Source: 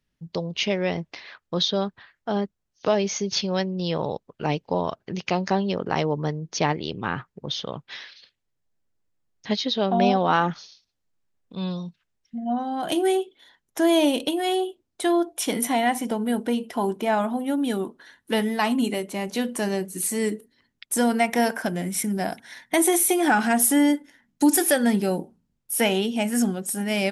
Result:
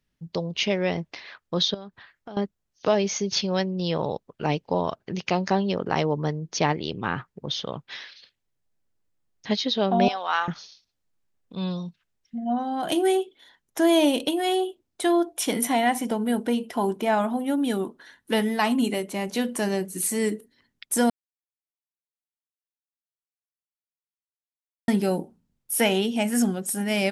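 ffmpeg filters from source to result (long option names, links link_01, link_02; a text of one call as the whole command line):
ffmpeg -i in.wav -filter_complex "[0:a]asettb=1/sr,asplit=3[link_01][link_02][link_03];[link_01]atrim=end=1.744[link_04];[link_02]atrim=start=1.74:end=2.37,asetpts=PTS-STARTPTS,afade=type=in:duration=0.004:curve=qsin,afade=type=out:start_time=0.626:duration=0.004:curve=qsin,acompressor=threshold=-37dB:ratio=5:attack=3.2:release=140:knee=1:detection=peak[link_05];[link_03]atrim=start=2.366[link_06];[link_04][link_05]acrossfade=duration=0.004:curve1=hsin:curve2=qsin[link_07];[link_07][link_06]acrossfade=duration=0.004:curve1=qsin:curve2=hsin,asettb=1/sr,asplit=3[link_08][link_09][link_10];[link_08]atrim=end=10.084[link_11];[link_09]atrim=start=10.08:end=10.48,asetpts=PTS-STARTPTS,afade=type=in:duration=0.004:curve=qsin,afade=type=out:start_time=0.396:duration=0.004:curve=qsin,highpass=1100[link_12];[link_10]atrim=start=10.476[link_13];[link_11][link_12]acrossfade=duration=0.004:curve1=hsin:curve2=qsin[link_14];[link_14][link_13]acrossfade=duration=0.004:curve1=qsin:curve2=hsin,asplit=3[link_15][link_16][link_17];[link_15]atrim=end=21.1,asetpts=PTS-STARTPTS,afade=type=out:start_time=21.096:duration=0.004:curve=hsin[link_18];[link_16]atrim=start=21.1:end=24.88,asetpts=PTS-STARTPTS,volume=0[link_19];[link_17]atrim=start=24.88,asetpts=PTS-STARTPTS,afade=type=in:duration=0.004:curve=hsin[link_20];[link_18][link_19][link_20]concat=n=3:v=0:a=1" out.wav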